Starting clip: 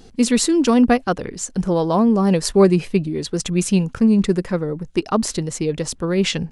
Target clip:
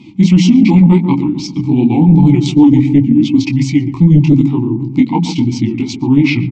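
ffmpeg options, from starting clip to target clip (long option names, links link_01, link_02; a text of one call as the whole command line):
ffmpeg -i in.wav -filter_complex "[0:a]asplit=2[link_01][link_02];[link_02]acompressor=threshold=-29dB:ratio=5,volume=0dB[link_03];[link_01][link_03]amix=inputs=2:normalize=0,highshelf=frequency=2600:gain=3,flanger=delay=16:depth=7.4:speed=2.7,equalizer=frequency=125:width_type=o:width=1:gain=6,equalizer=frequency=250:width_type=o:width=1:gain=7,equalizer=frequency=500:width_type=o:width=1:gain=-10,equalizer=frequency=1000:width_type=o:width=1:gain=-5,equalizer=frequency=2000:width_type=o:width=1:gain=-10,equalizer=frequency=8000:width_type=o:width=1:gain=3,flanger=delay=6.2:depth=6.7:regen=8:speed=0.55:shape=triangular,highpass=frequency=60:poles=1,bandreject=frequency=60:width_type=h:width=6,bandreject=frequency=120:width_type=h:width=6,bandreject=frequency=180:width_type=h:width=6,bandreject=frequency=240:width_type=h:width=6,bandreject=frequency=300:width_type=h:width=6,bandreject=frequency=360:width_type=h:width=6,asplit=2[link_04][link_05];[link_05]adelay=131,lowpass=frequency=1200:poles=1,volume=-9dB,asplit=2[link_06][link_07];[link_07]adelay=131,lowpass=frequency=1200:poles=1,volume=0.48,asplit=2[link_08][link_09];[link_09]adelay=131,lowpass=frequency=1200:poles=1,volume=0.48,asplit=2[link_10][link_11];[link_11]adelay=131,lowpass=frequency=1200:poles=1,volume=0.48,asplit=2[link_12][link_13];[link_13]adelay=131,lowpass=frequency=1200:poles=1,volume=0.48[link_14];[link_06][link_08][link_10][link_12][link_14]amix=inputs=5:normalize=0[link_15];[link_04][link_15]amix=inputs=2:normalize=0,asetrate=33038,aresample=44100,atempo=1.33484,asplit=3[link_16][link_17][link_18];[link_16]bandpass=frequency=300:width_type=q:width=8,volume=0dB[link_19];[link_17]bandpass=frequency=870:width_type=q:width=8,volume=-6dB[link_20];[link_18]bandpass=frequency=2240:width_type=q:width=8,volume=-9dB[link_21];[link_19][link_20][link_21]amix=inputs=3:normalize=0,apsyclip=28dB,volume=-1.5dB" out.wav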